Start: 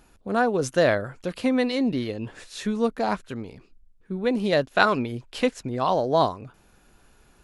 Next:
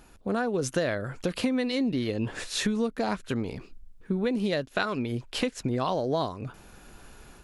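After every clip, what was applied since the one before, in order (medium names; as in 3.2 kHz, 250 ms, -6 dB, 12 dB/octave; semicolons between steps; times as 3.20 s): level rider gain up to 5.5 dB; dynamic bell 840 Hz, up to -5 dB, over -30 dBFS, Q 1; compression 6:1, threshold -27 dBFS, peak gain reduction 13 dB; trim +2.5 dB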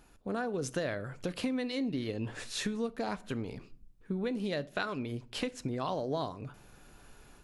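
simulated room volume 600 m³, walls furnished, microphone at 0.36 m; trim -6.5 dB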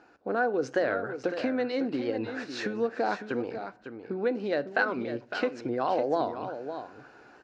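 cabinet simulation 170–5100 Hz, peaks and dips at 170 Hz -9 dB, 330 Hz +7 dB, 500 Hz +6 dB, 760 Hz +8 dB, 1.5 kHz +9 dB, 3.4 kHz -9 dB; delay 553 ms -9.5 dB; warped record 45 rpm, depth 100 cents; trim +2 dB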